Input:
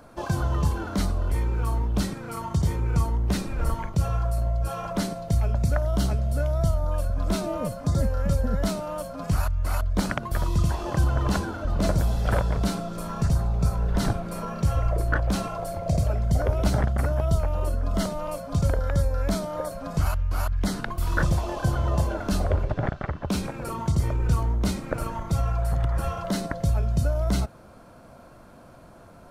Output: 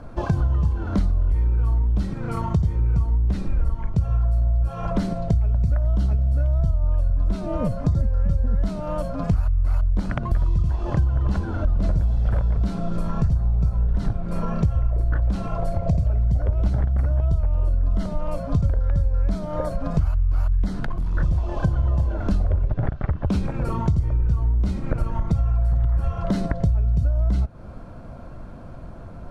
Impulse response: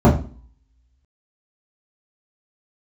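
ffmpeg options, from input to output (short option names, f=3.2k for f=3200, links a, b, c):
-filter_complex "[0:a]aemphasis=mode=reproduction:type=bsi,acompressor=threshold=-22dB:ratio=5,asettb=1/sr,asplit=3[a][b][c];[a]atrim=end=20.684[d];[b]atrim=start=20.68:end=21.15,asetpts=PTS-STARTPTS,afade=t=in:d=0.004:c=qsin,afade=t=out:st=0.466:d=0.004:c=qsin,volume=23.5dB,asoftclip=hard,volume=-23.5dB[e];[c]atrim=start=21.146[f];[d][e]acrossfade=d=0.004:c1=hsin:c2=qsin[g];[g][f]acrossfade=d=0.004:c1=qsin:c2=hsin,volume=3.5dB"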